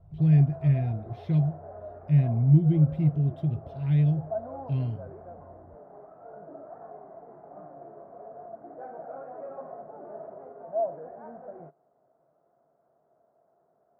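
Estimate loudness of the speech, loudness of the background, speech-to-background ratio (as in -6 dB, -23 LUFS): -24.5 LUFS, -41.5 LUFS, 17.0 dB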